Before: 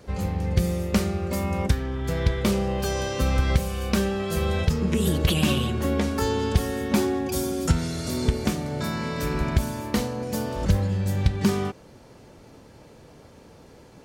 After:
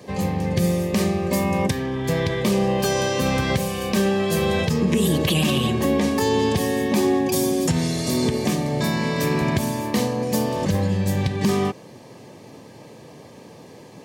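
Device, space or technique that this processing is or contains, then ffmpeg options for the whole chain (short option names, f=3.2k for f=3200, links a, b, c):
PA system with an anti-feedback notch: -af "highpass=f=110:w=0.5412,highpass=f=110:w=1.3066,asuperstop=centerf=1400:order=8:qfactor=5.9,alimiter=limit=-17dB:level=0:latency=1:release=52,volume=6.5dB"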